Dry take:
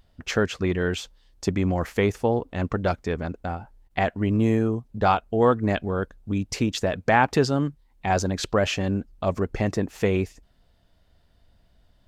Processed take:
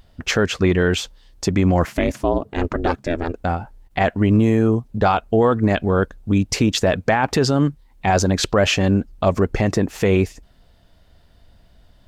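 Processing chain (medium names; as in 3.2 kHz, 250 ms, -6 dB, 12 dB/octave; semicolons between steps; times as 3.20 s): peak limiter -15.5 dBFS, peak gain reduction 10.5 dB; 1.85–3.34 s: ring modulator 170 Hz; trim +8.5 dB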